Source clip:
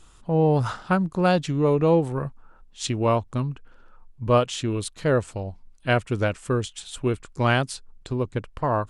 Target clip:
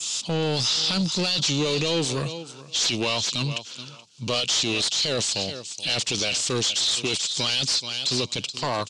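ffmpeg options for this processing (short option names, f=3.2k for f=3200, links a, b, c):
-filter_complex "[0:a]equalizer=f=5.2k:t=o:w=1.5:g=7.5,acrossover=split=660[a][b];[a]agate=range=-33dB:threshold=-48dB:ratio=3:detection=peak[c];[b]asoftclip=type=hard:threshold=-16dB[d];[c][d]amix=inputs=2:normalize=0,acompressor=mode=upward:threshold=-40dB:ratio=2.5,aexciter=amount=12.9:drive=5:freq=2.5k,acontrast=30,highpass=f=130:w=0.5412,highpass=f=130:w=1.3066,asplit=2[e][f];[f]aecho=0:1:427|854:0.0944|0.0151[g];[e][g]amix=inputs=2:normalize=0,adynamicequalizer=threshold=0.0891:dfrequency=4000:dqfactor=1:tfrequency=4000:tqfactor=1:attack=5:release=100:ratio=0.375:range=3:mode=boostabove:tftype=bell,alimiter=limit=-8.5dB:level=0:latency=1:release=17,asoftclip=type=tanh:threshold=-17.5dB,lowpass=f=7.2k:w=0.5412,lowpass=f=7.2k:w=1.3066,volume=-1.5dB"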